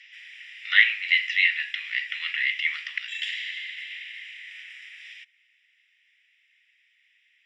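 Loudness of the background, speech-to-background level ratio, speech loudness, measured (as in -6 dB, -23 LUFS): -37.5 LUFS, 14.5 dB, -23.0 LUFS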